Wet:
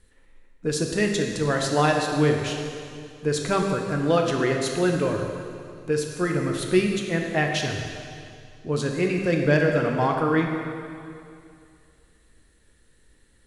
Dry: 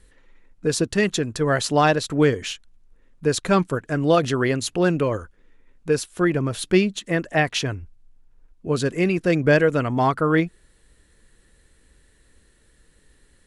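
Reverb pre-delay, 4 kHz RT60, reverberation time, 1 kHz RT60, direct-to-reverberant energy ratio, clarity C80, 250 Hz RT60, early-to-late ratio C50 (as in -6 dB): 5 ms, 2.3 s, 2.4 s, 2.4 s, 1.5 dB, 4.5 dB, 2.4 s, 3.0 dB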